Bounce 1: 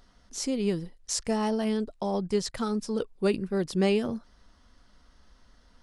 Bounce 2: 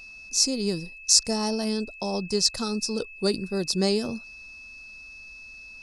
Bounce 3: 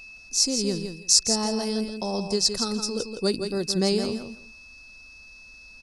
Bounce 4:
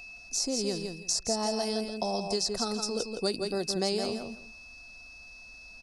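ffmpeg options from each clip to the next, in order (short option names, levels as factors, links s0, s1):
-af "highshelf=f=3600:t=q:w=3:g=9,aeval=exprs='val(0)+0.00794*sin(2*PI*2600*n/s)':c=same"
-af "aecho=1:1:166|332|498:0.422|0.0717|0.0122"
-filter_complex "[0:a]equalizer=f=700:w=4:g=10,acrossover=split=320|1800[s0][s1][s2];[s0]acompressor=threshold=0.0158:ratio=4[s3];[s1]acompressor=threshold=0.0398:ratio=4[s4];[s2]acompressor=threshold=0.0398:ratio=4[s5];[s3][s4][s5]amix=inputs=3:normalize=0,volume=0.841"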